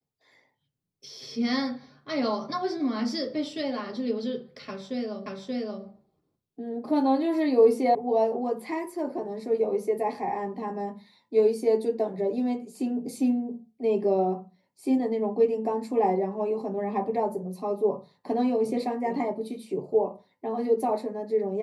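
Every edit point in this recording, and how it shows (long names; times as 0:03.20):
0:05.26: the same again, the last 0.58 s
0:07.95: cut off before it has died away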